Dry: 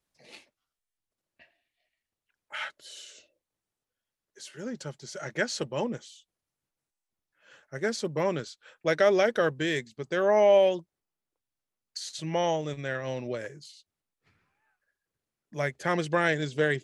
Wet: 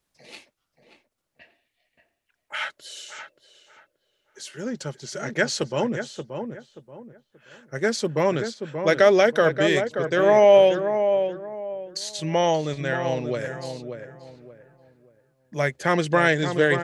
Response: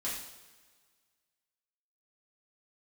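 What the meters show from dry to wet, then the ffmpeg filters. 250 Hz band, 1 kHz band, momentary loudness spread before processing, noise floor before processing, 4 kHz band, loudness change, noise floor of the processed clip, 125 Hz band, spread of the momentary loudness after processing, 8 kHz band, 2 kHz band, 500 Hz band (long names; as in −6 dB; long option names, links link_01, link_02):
+6.5 dB, +6.5 dB, 20 LU, below −85 dBFS, +6.0 dB, +5.5 dB, −78 dBFS, +6.5 dB, 20 LU, +6.0 dB, +6.5 dB, +6.5 dB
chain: -filter_complex "[0:a]asplit=2[link_01][link_02];[link_02]adelay=580,lowpass=frequency=1500:poles=1,volume=-7dB,asplit=2[link_03][link_04];[link_04]adelay=580,lowpass=frequency=1500:poles=1,volume=0.3,asplit=2[link_05][link_06];[link_06]adelay=580,lowpass=frequency=1500:poles=1,volume=0.3,asplit=2[link_07][link_08];[link_08]adelay=580,lowpass=frequency=1500:poles=1,volume=0.3[link_09];[link_01][link_03][link_05][link_07][link_09]amix=inputs=5:normalize=0,volume=6dB"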